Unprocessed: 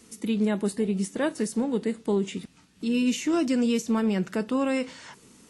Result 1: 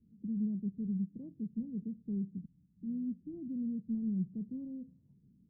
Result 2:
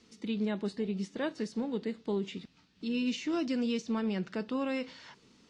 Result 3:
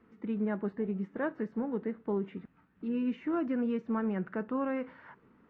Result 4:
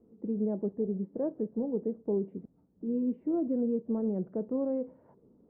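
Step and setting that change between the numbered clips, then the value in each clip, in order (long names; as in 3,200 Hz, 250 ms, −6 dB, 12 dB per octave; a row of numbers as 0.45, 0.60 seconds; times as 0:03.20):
transistor ladder low-pass, frequency: 210, 5,600, 1,900, 690 Hertz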